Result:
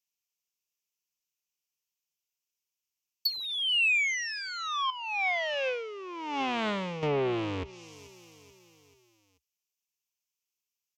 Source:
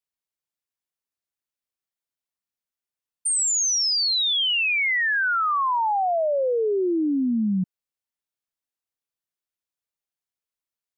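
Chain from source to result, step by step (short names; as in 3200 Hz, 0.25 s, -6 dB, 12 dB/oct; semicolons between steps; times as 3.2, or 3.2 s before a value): cycle switcher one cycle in 2, inverted; feedback echo 0.435 s, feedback 51%, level -21.5 dB; treble ducked by the level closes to 2000 Hz, closed at -20.5 dBFS; ripple EQ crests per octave 0.77, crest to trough 11 dB; 4.9–7.03 negative-ratio compressor -24 dBFS, ratio -0.5; treble ducked by the level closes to 2200 Hz, closed at -14.5 dBFS; resonant high shelf 2300 Hz +10.5 dB, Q 1.5; Doppler distortion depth 0.36 ms; gain -8 dB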